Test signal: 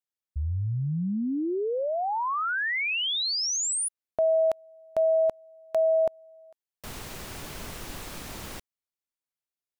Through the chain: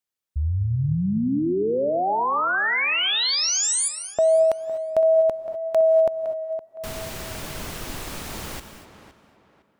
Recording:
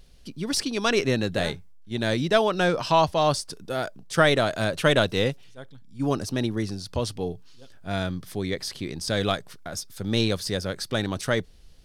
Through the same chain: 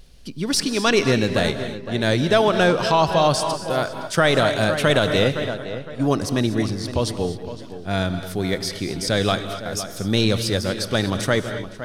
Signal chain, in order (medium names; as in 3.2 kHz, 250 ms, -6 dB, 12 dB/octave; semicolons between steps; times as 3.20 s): tape echo 512 ms, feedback 37%, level -11 dB, low-pass 2.2 kHz; gated-style reverb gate 270 ms rising, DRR 10 dB; loudness maximiser +10.5 dB; trim -5.5 dB